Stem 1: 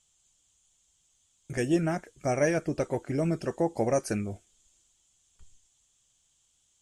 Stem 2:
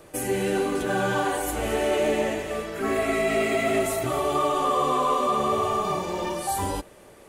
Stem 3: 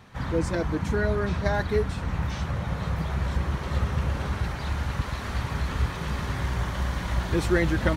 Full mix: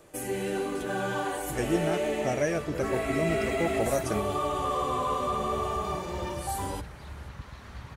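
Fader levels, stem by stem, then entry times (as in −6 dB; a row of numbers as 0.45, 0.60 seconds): −2.5, −6.0, −13.5 decibels; 0.00, 0.00, 2.40 seconds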